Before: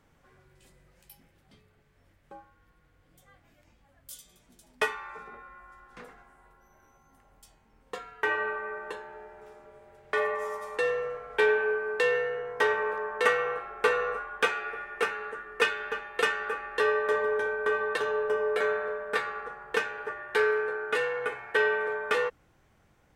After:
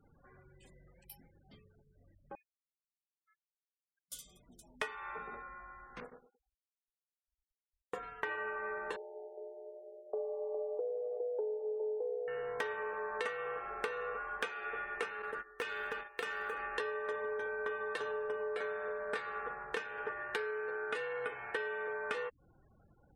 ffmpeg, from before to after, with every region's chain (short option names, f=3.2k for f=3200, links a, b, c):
-filter_complex "[0:a]asettb=1/sr,asplit=3[a][b][c];[a]atrim=end=2.354[d];[b]atrim=start=2.35:end=4.12,asetpts=PTS-STARTPTS,afade=t=in:d=0.004:c=qsin,afade=t=out:st=1.766:d=0.004:c=qsin,highpass=790,aderivative,lowpass=f=2.8k:t=q:w=0.5098,lowpass=f=2.8k:t=q:w=0.6013,lowpass=f=2.8k:t=q:w=0.9,lowpass=f=2.8k:t=q:w=2.563,afreqshift=-3300[e];[c]atrim=start=4.116[f];[d][e]acrossfade=d=0.004:c1=hsin:c2=qsin[g];[g][f]acrossfade=d=0.004:c1=qsin:c2=hsin,asettb=1/sr,asplit=3[h][i][j];[h]atrim=end=6.004[k];[i]atrim=start=6:end=8.03,asetpts=PTS-STARTPTS,afade=t=in:d=0.004:c=qsin,afade=t=out:st=2.026:d=0.004:c=qsin,equalizer=f=4.2k:t=o:w=1.5:g=-12.5,agate=range=-17dB:threshold=-50dB:ratio=16:release=100:detection=peak,asplit=2[l][m];[m]adelay=108,lowpass=f=1.7k:p=1,volume=-6dB,asplit=2[n][o];[o]adelay=108,lowpass=f=1.7k:p=1,volume=0.29,asplit=2[p][q];[q]adelay=108,lowpass=f=1.7k:p=1,volume=0.29,asplit=2[r][s];[s]adelay=108,lowpass=f=1.7k:p=1,volume=0.29[t];[l][n][p][r][t]amix=inputs=5:normalize=0,atrim=end_sample=89523[u];[j]atrim=start=8.026[v];[k][u]acrossfade=d=0.004:c1=hsin:c2=qsin[w];[w][v]acrossfade=d=0.004:c1=qsin:c2=hsin,asettb=1/sr,asplit=3[x][y][z];[x]atrim=end=8.964[aa];[y]atrim=start=8.96:end=12.28,asetpts=PTS-STARTPTS,afade=t=in:d=0.004:c=qsin,afade=t=out:st=3.316:d=0.004:c=qsin,asuperpass=centerf=520:order=8:qfactor=1.3,aecho=1:1:410:0.531,atrim=end_sample=146412[ab];[z]atrim=start=12.276[ac];[aa][ab]acrossfade=d=0.004:c1=hsin:c2=qsin[ad];[ad][ac]acrossfade=d=0.004:c1=qsin:c2=hsin,asettb=1/sr,asplit=3[ae][af][ag];[ae]atrim=end=15.224[ah];[af]atrim=start=15.22:end=16.6,asetpts=PTS-STARTPTS,afade=t=in:d=0.004:c=qsin,afade=t=out:st=1.376:d=0.004:c=qsin,agate=range=-13dB:threshold=-41dB:ratio=16:release=100:detection=peak,acompressor=threshold=-34dB:ratio=2.5:attack=3.2:release=140:knee=1:detection=peak,acrusher=bits=5:mode=log:mix=0:aa=0.000001[ai];[ag]atrim=start=16.596[aj];[ah][ai]acrossfade=d=0.004:c1=hsin:c2=qsin[ak];[ak][aj]acrossfade=d=0.004:c1=qsin:c2=hsin,acompressor=threshold=-35dB:ratio=10,afftfilt=real='re*gte(hypot(re,im),0.00112)':imag='im*gte(hypot(re,im),0.00112)':win_size=1024:overlap=0.75"